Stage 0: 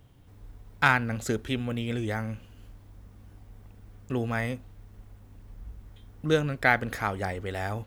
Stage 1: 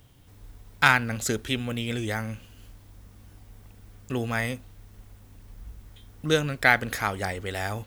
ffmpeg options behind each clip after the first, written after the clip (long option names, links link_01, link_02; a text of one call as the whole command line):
ffmpeg -i in.wav -af "highshelf=frequency=2300:gain=9.5" out.wav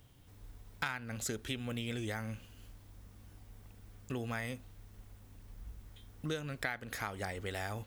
ffmpeg -i in.wav -af "acompressor=threshold=-29dB:ratio=6,volume=-5.5dB" out.wav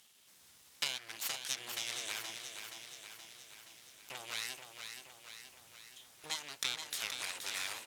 ffmpeg -i in.wav -af "aeval=exprs='abs(val(0))':channel_layout=same,bandpass=frequency=6900:width_type=q:width=0.56:csg=0,aecho=1:1:474|948|1422|1896|2370|2844|3318|3792:0.447|0.264|0.155|0.0917|0.0541|0.0319|0.0188|0.0111,volume=10dB" out.wav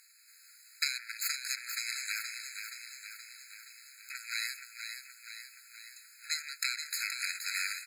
ffmpeg -i in.wav -af "afftfilt=real='re*eq(mod(floor(b*sr/1024/1300),2),1)':imag='im*eq(mod(floor(b*sr/1024/1300),2),1)':win_size=1024:overlap=0.75,volume=7.5dB" out.wav